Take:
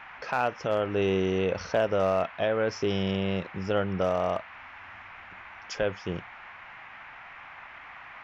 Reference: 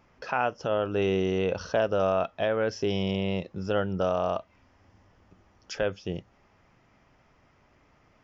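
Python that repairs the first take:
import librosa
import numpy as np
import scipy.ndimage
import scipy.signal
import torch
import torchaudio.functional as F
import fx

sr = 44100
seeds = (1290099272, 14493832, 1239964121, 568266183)

y = fx.fix_declip(x, sr, threshold_db=-16.0)
y = fx.noise_reduce(y, sr, print_start_s=6.51, print_end_s=7.01, reduce_db=16.0)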